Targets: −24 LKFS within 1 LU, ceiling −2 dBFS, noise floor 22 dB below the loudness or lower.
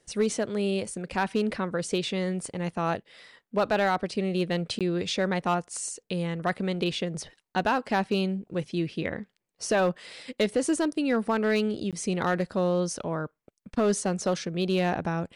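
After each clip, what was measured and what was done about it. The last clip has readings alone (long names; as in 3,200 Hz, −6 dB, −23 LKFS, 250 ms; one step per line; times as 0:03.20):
share of clipped samples 0.5%; peaks flattened at −17.0 dBFS; number of dropouts 2; longest dropout 17 ms; integrated loudness −28.5 LKFS; sample peak −17.0 dBFS; target loudness −24.0 LKFS
→ clipped peaks rebuilt −17 dBFS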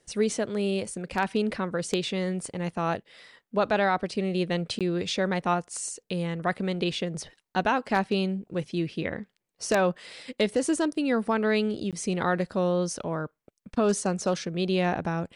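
share of clipped samples 0.0%; number of dropouts 2; longest dropout 17 ms
→ repair the gap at 0:04.79/0:11.91, 17 ms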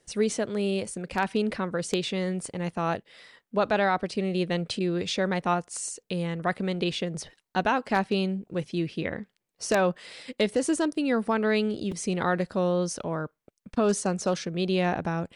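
number of dropouts 0; integrated loudness −28.0 LKFS; sample peak −8.0 dBFS; target loudness −24.0 LKFS
→ level +4 dB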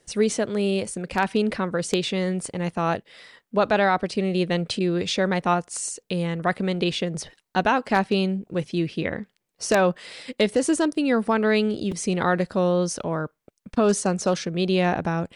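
integrated loudness −24.0 LKFS; sample peak −4.0 dBFS; background noise floor −75 dBFS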